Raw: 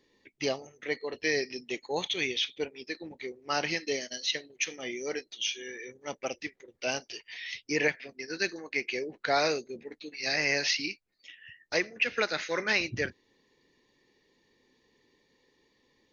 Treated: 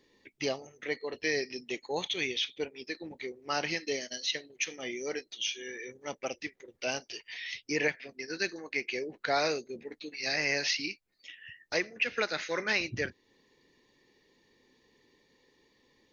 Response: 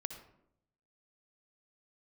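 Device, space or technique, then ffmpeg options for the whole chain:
parallel compression: -filter_complex "[0:a]asplit=2[link_01][link_02];[link_02]acompressor=threshold=-42dB:ratio=6,volume=-3dB[link_03];[link_01][link_03]amix=inputs=2:normalize=0,volume=-3dB"

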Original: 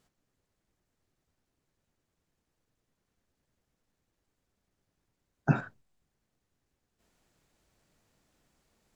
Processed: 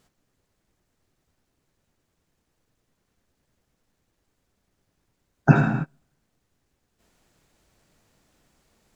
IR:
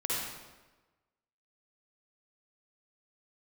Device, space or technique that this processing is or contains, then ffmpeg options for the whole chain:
keyed gated reverb: -filter_complex "[0:a]asplit=3[link_01][link_02][link_03];[1:a]atrim=start_sample=2205[link_04];[link_02][link_04]afir=irnorm=-1:irlink=0[link_05];[link_03]apad=whole_len=394853[link_06];[link_05][link_06]sidechaingate=range=-32dB:threshold=-57dB:ratio=16:detection=peak,volume=-6.5dB[link_07];[link_01][link_07]amix=inputs=2:normalize=0,volume=7dB"

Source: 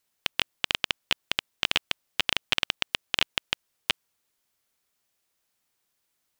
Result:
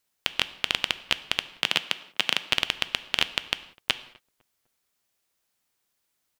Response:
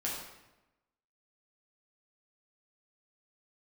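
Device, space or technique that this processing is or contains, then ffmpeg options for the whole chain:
keyed gated reverb: -filter_complex "[0:a]asettb=1/sr,asplit=3[link_01][link_02][link_03];[link_01]atrim=end=1.524[link_04];[link_02]atrim=start=1.52:end=2.48,asetpts=PTS-STARTPTS,afade=type=in:duration=0.004:curve=qsin,afade=type=out:start_time=0.956:duration=0.004:curve=qsin,highpass=frequency=150:width=0.5412,highpass=frequency=150:width=1.3066[link_05];[link_03]atrim=start=2.476[link_06];[link_04][link_05]acrossfade=duration=0.004:curve1=hsin:curve2=qsin[link_07];[link_07][link_06]acrossfade=duration=0.004:curve1=qsin:curve2=hsin,asplit=2[link_08][link_09];[link_09]adelay=252,lowpass=frequency=1100:poles=1,volume=-23.5dB,asplit=2[link_10][link_11];[link_11]adelay=252,lowpass=frequency=1100:poles=1,volume=0.43,asplit=2[link_12][link_13];[link_13]adelay=252,lowpass=frequency=1100:poles=1,volume=0.43[link_14];[link_08][link_10][link_12][link_14]amix=inputs=4:normalize=0,asplit=3[link_15][link_16][link_17];[1:a]atrim=start_sample=2205[link_18];[link_16][link_18]afir=irnorm=-1:irlink=0[link_19];[link_17]apad=whole_len=315471[link_20];[link_19][link_20]sidechaingate=range=-33dB:threshold=-56dB:ratio=16:detection=peak,volume=-14.5dB[link_21];[link_15][link_21]amix=inputs=2:normalize=0"

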